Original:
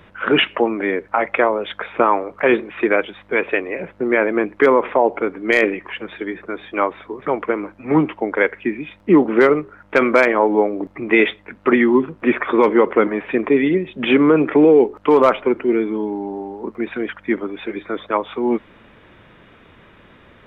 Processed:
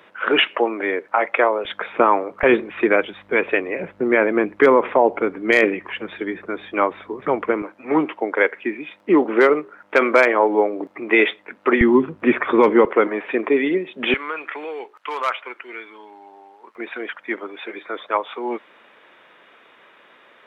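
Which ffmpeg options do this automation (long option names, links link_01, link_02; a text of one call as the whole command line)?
ffmpeg -i in.wav -af "asetnsamples=nb_out_samples=441:pad=0,asendcmd='1.65 highpass f 170;2.43 highpass f 80;7.62 highpass f 330;11.81 highpass f 86;12.85 highpass f 330;14.14 highpass f 1400;16.76 highpass f 530',highpass=370" out.wav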